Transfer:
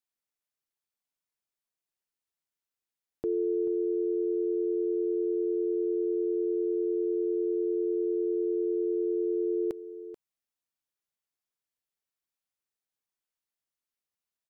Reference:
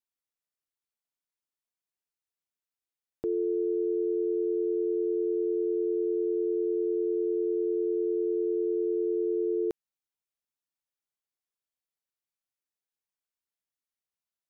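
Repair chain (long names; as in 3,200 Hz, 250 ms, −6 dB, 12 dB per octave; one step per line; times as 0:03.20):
echo removal 435 ms −13.5 dB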